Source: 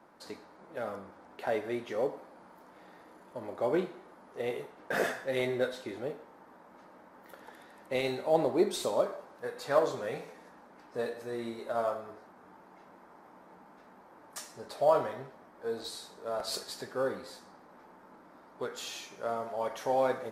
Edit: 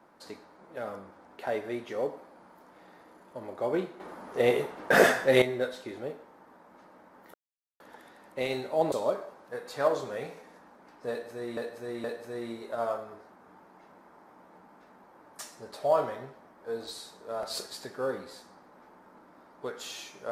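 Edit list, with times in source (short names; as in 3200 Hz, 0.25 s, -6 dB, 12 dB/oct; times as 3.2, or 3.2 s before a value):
4–5.42 gain +10.5 dB
7.34 insert silence 0.46 s
8.46–8.83 cut
11.01–11.48 loop, 3 plays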